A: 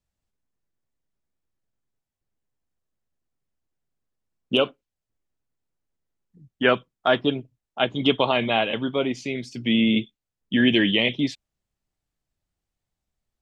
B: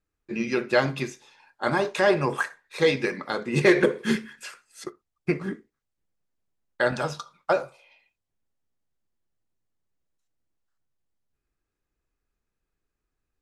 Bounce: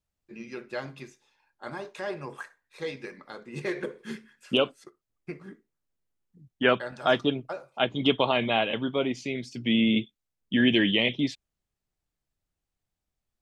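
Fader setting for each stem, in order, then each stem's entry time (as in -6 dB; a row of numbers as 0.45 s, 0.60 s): -3.0 dB, -13.5 dB; 0.00 s, 0.00 s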